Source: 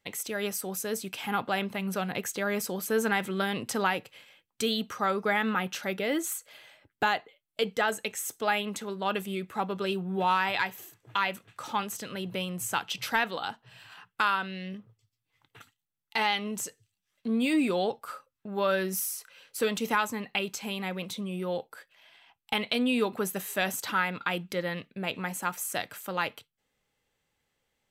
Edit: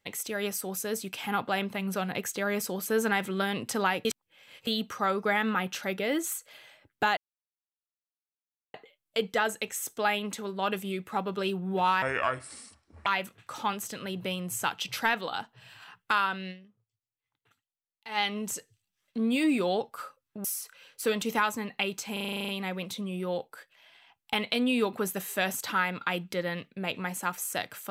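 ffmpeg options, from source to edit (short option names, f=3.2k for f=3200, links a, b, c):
-filter_complex "[0:a]asplit=18[a][b][c][d][e][f][g][h][i][j][k][l][m][n][o][p][q][r];[a]atrim=end=4.052[s];[b]atrim=start=4.048:end=4.672,asetpts=PTS-STARTPTS,areverse[t];[c]atrim=start=4.668:end=7.17,asetpts=PTS-STARTPTS,afade=t=out:st=2.498:d=0.004:c=hsin,apad=pad_dur=1.57[u];[d]atrim=start=7.17:end=10.454,asetpts=PTS-STARTPTS,afade=t=in:d=0.004:c=hsin[v];[e]atrim=start=10.45:end=11.16,asetpts=PTS-STARTPTS,asetrate=29988,aresample=44100[w];[f]atrim=start=11.156:end=15,asetpts=PTS-STARTPTS,afade=t=out:st=3.444:d=0.4:c=exp:silence=0.141254[x];[g]atrim=start=15:end=15.88,asetpts=PTS-STARTPTS,volume=-17dB[y];[h]atrim=start=15.88:end=18.542,asetpts=PTS-STARTPTS,afade=t=in:d=0.4:c=exp:silence=0.141254[z];[i]atrim=start=18.998:end=20.722[aa];[j]atrim=start=20.678:end=20.722[ab];[k]atrim=start=20.678:end=20.722[ac];[l]atrim=start=20.678:end=20.722[ad];[m]atrim=start=20.678:end=20.722[ae];[n]atrim=start=20.678:end=20.722[af];[o]atrim=start=20.678:end=20.722[ag];[p]atrim=start=20.678:end=20.722[ah];[q]atrim=start=20.678:end=20.722[ai];[r]atrim=start=20.678[aj];[s][t]acrossfade=d=0.004:c1=hsin:c2=hsin[ak];[u][v]concat=n=2:v=0:a=1[al];[ak][al]acrossfade=d=0.004:c1=hsin:c2=hsin[am];[am][w]acrossfade=d=0.004:c1=hsin:c2=hsin[an];[x][y][z]concat=n=3:v=0:a=1[ao];[an][ao]acrossfade=d=0.004:c1=hsin:c2=hsin[ap];[ap][aa]acrossfade=d=0.004:c1=hsin:c2=hsin[aq];[aq][ab]acrossfade=d=0.004:c1=hsin:c2=hsin[ar];[ar][ac]acrossfade=d=0.004:c1=hsin:c2=hsin[as];[as][ad]acrossfade=d=0.004:c1=hsin:c2=hsin[at];[at][ae]acrossfade=d=0.004:c1=hsin:c2=hsin[au];[au][af]acrossfade=d=0.004:c1=hsin:c2=hsin[av];[av][ag]acrossfade=d=0.004:c1=hsin:c2=hsin[aw];[aw][ah]acrossfade=d=0.004:c1=hsin:c2=hsin[ax];[ax][ai]acrossfade=d=0.004:c1=hsin:c2=hsin[ay];[ay][aj]acrossfade=d=0.004:c1=hsin:c2=hsin"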